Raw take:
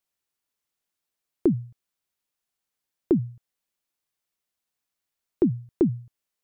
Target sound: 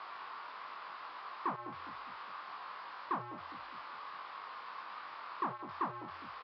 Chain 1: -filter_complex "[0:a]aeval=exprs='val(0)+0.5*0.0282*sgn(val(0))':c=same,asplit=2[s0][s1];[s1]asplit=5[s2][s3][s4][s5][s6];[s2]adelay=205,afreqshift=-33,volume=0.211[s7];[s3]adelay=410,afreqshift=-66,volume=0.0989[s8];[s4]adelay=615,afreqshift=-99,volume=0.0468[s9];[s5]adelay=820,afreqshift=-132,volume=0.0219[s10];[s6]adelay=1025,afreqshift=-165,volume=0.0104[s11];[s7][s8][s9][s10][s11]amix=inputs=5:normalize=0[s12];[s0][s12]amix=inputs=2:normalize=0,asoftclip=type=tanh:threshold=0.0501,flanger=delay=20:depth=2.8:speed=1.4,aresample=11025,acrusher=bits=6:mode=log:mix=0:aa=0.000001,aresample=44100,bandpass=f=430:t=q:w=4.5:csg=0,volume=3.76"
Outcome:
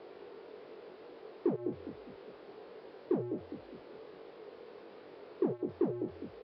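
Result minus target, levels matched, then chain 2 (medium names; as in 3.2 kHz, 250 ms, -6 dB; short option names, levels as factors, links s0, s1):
1 kHz band -20.0 dB
-filter_complex "[0:a]aeval=exprs='val(0)+0.5*0.0282*sgn(val(0))':c=same,asplit=2[s0][s1];[s1]asplit=5[s2][s3][s4][s5][s6];[s2]adelay=205,afreqshift=-33,volume=0.211[s7];[s3]adelay=410,afreqshift=-66,volume=0.0989[s8];[s4]adelay=615,afreqshift=-99,volume=0.0468[s9];[s5]adelay=820,afreqshift=-132,volume=0.0219[s10];[s6]adelay=1025,afreqshift=-165,volume=0.0104[s11];[s7][s8][s9][s10][s11]amix=inputs=5:normalize=0[s12];[s0][s12]amix=inputs=2:normalize=0,asoftclip=type=tanh:threshold=0.0501,flanger=delay=20:depth=2.8:speed=1.4,aresample=11025,acrusher=bits=6:mode=log:mix=0:aa=0.000001,aresample=44100,bandpass=f=1100:t=q:w=4.5:csg=0,volume=3.76"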